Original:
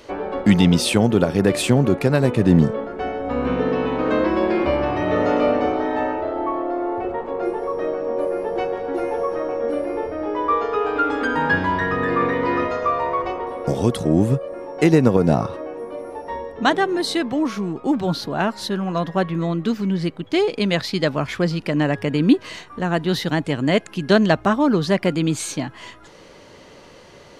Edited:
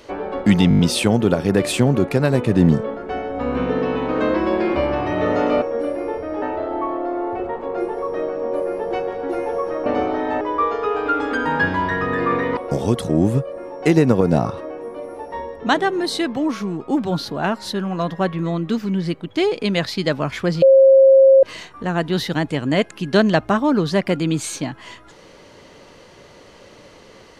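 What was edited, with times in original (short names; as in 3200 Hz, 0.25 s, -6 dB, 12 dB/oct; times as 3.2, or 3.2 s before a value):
0.69 stutter 0.02 s, 6 plays
5.52–6.07 swap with 9.51–10.31
12.47–13.53 cut
21.58–22.39 bleep 537 Hz -6.5 dBFS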